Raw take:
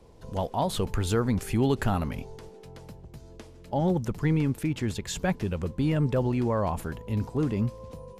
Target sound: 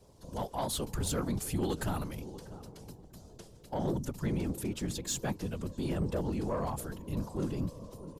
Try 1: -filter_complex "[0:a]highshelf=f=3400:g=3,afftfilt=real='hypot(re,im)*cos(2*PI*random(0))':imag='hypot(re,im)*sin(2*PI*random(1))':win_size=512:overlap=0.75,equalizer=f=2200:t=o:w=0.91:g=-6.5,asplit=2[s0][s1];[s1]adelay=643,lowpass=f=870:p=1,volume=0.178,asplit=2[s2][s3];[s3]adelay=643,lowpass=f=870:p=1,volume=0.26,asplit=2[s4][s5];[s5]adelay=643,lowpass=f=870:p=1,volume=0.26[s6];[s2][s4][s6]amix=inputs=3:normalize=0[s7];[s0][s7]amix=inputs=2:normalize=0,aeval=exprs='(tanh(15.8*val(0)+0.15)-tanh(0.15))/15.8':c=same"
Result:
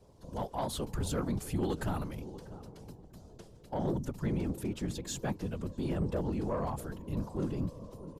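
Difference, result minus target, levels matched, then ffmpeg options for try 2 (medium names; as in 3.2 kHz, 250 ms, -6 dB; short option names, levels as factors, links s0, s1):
8 kHz band -5.5 dB
-filter_complex "[0:a]highshelf=f=3400:g=10.5,afftfilt=real='hypot(re,im)*cos(2*PI*random(0))':imag='hypot(re,im)*sin(2*PI*random(1))':win_size=512:overlap=0.75,equalizer=f=2200:t=o:w=0.91:g=-6.5,asplit=2[s0][s1];[s1]adelay=643,lowpass=f=870:p=1,volume=0.178,asplit=2[s2][s3];[s3]adelay=643,lowpass=f=870:p=1,volume=0.26,asplit=2[s4][s5];[s5]adelay=643,lowpass=f=870:p=1,volume=0.26[s6];[s2][s4][s6]amix=inputs=3:normalize=0[s7];[s0][s7]amix=inputs=2:normalize=0,aeval=exprs='(tanh(15.8*val(0)+0.15)-tanh(0.15))/15.8':c=same"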